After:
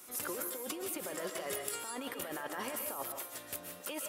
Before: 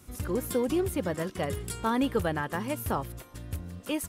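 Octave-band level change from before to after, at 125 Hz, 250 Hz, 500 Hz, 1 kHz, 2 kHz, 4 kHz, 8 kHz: −23.5, −15.0, −10.5, −9.0, −6.0, −3.0, +1.5 decibels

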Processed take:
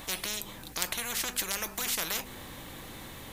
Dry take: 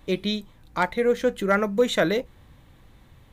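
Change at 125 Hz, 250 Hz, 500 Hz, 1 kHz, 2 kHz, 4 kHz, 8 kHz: −12.5, −17.5, −21.5, −12.0, −7.0, −1.0, +11.0 decibels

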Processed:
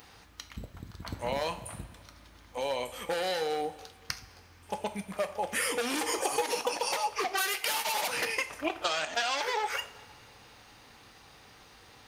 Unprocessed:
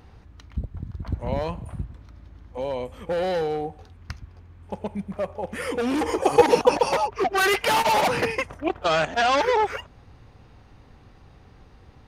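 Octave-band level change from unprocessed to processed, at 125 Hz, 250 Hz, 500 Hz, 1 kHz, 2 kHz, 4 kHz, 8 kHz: −13.5, −11.5, −11.0, −9.0, −5.5, −2.5, +2.0 decibels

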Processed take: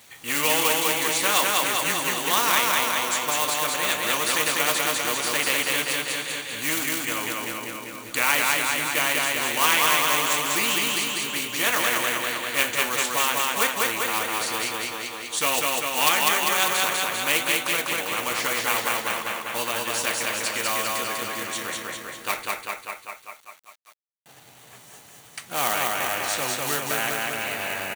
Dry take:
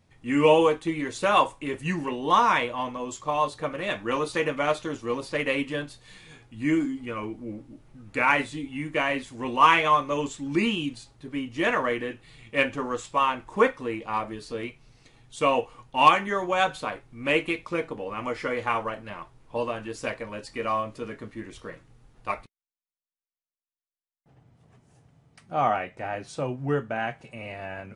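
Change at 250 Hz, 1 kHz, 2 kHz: −5.5, −0.5, +6.0 decibels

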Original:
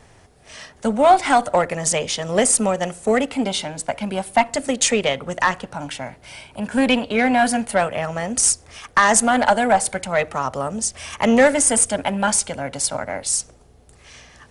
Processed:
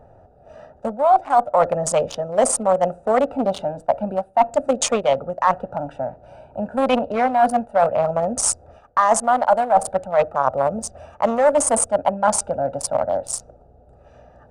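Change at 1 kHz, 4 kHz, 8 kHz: +1.5, −8.5, −5.0 decibels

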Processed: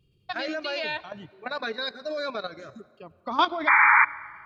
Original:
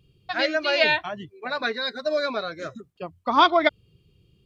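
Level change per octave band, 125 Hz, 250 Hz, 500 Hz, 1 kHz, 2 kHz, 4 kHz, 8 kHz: −6.0 dB, −6.0 dB, −8.0 dB, −0.5 dB, +3.0 dB, −6.5 dB, can't be measured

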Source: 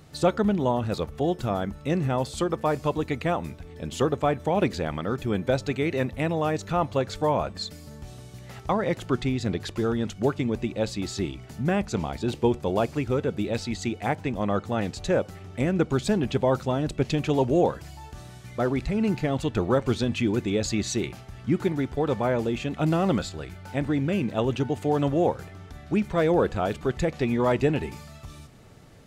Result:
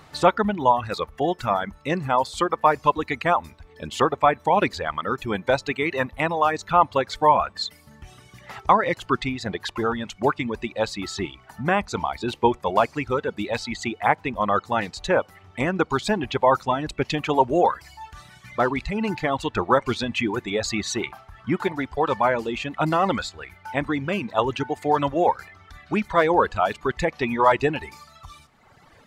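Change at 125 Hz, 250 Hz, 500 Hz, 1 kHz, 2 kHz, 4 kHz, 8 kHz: −4.5, −1.5, +2.0, +9.5, +8.0, +4.5, +1.0 decibels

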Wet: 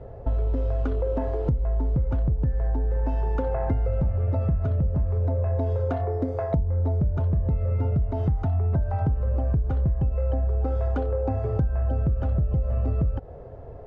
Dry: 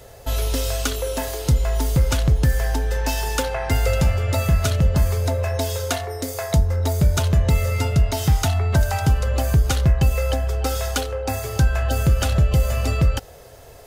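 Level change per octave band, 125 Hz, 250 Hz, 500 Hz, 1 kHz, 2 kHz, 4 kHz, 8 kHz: −4.0 dB, −4.0 dB, −4.0 dB, −7.5 dB, −18.5 dB, below −30 dB, below −40 dB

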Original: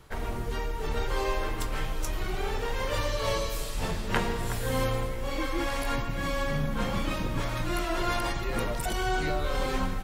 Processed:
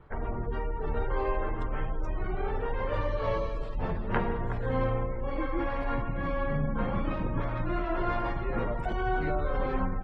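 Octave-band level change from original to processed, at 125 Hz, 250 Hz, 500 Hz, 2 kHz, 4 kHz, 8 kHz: 0.0 dB, 0.0 dB, 0.0 dB, −4.5 dB, −15.0 dB, below −30 dB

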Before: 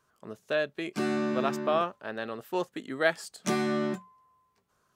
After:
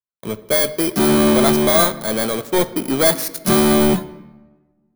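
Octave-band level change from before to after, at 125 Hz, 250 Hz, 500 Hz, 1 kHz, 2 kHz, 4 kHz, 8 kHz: +16.5, +15.0, +12.5, +10.5, +8.0, +17.5, +22.5 decibels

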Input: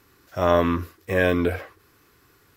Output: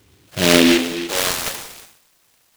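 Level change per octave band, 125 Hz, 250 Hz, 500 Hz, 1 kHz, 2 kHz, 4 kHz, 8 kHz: −1.0 dB, +7.5 dB, +1.0 dB, 0.0 dB, +6.5 dB, +20.0 dB, can't be measured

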